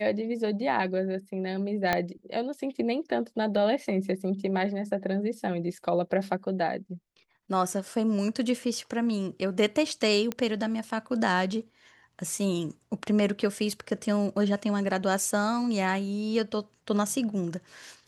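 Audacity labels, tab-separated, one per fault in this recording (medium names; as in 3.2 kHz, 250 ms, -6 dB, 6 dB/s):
1.930000	1.930000	pop -10 dBFS
10.320000	10.320000	pop -16 dBFS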